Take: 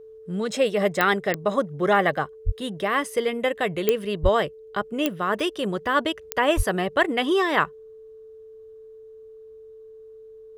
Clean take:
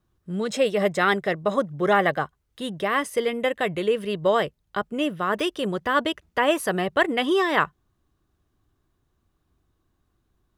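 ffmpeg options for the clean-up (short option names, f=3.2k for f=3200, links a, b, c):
-filter_complex "[0:a]adeclick=t=4,bandreject=f=440:w=30,asplit=3[a][b][c];[a]afade=t=out:st=2.45:d=0.02[d];[b]highpass=f=140:w=0.5412,highpass=f=140:w=1.3066,afade=t=in:st=2.45:d=0.02,afade=t=out:st=2.57:d=0.02[e];[c]afade=t=in:st=2.57:d=0.02[f];[d][e][f]amix=inputs=3:normalize=0,asplit=3[g][h][i];[g]afade=t=out:st=4.22:d=0.02[j];[h]highpass=f=140:w=0.5412,highpass=f=140:w=1.3066,afade=t=in:st=4.22:d=0.02,afade=t=out:st=4.34:d=0.02[k];[i]afade=t=in:st=4.34:d=0.02[l];[j][k][l]amix=inputs=3:normalize=0,asplit=3[m][n][o];[m]afade=t=out:st=6.56:d=0.02[p];[n]highpass=f=140:w=0.5412,highpass=f=140:w=1.3066,afade=t=in:st=6.56:d=0.02,afade=t=out:st=6.68:d=0.02[q];[o]afade=t=in:st=6.68:d=0.02[r];[p][q][r]amix=inputs=3:normalize=0"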